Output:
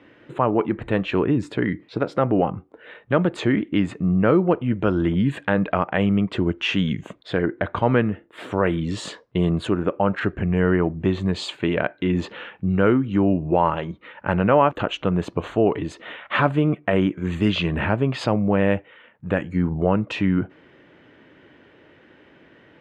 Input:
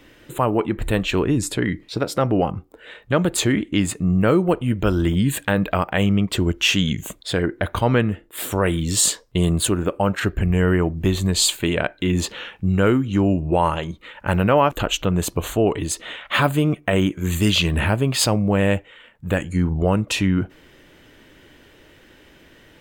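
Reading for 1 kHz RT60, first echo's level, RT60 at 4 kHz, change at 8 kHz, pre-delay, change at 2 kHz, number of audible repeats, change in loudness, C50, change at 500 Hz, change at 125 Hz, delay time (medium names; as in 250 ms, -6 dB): no reverb, no echo, no reverb, under -20 dB, no reverb, -2.0 dB, no echo, -1.5 dB, no reverb, 0.0 dB, -3.0 dB, no echo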